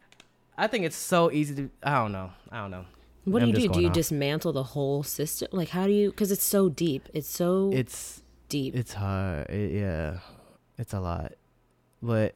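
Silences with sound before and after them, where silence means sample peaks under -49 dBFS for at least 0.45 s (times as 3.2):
11.34–11.93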